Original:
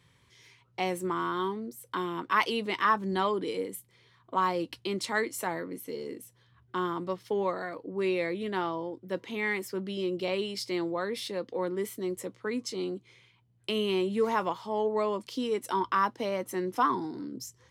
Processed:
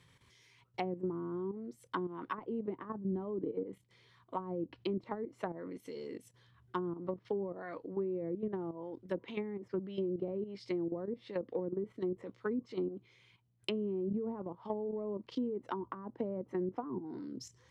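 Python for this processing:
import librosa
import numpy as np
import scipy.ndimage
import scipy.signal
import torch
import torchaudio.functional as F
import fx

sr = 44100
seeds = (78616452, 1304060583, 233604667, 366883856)

y = fx.level_steps(x, sr, step_db=11)
y = fx.env_lowpass_down(y, sr, base_hz=360.0, full_db=-30.5)
y = y * 10.0 ** (1.0 / 20.0)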